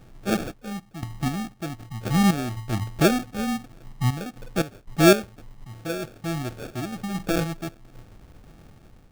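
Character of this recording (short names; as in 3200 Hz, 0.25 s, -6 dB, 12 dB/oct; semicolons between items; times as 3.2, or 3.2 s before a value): random-step tremolo 3.9 Hz, depth 85%; phasing stages 8, 1.4 Hz, lowest notch 640–1700 Hz; aliases and images of a low sample rate 1000 Hz, jitter 0%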